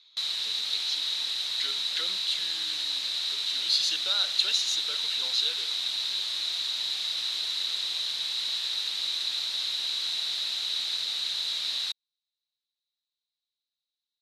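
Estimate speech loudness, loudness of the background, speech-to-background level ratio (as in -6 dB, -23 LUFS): -30.0 LUFS, -27.5 LUFS, -2.5 dB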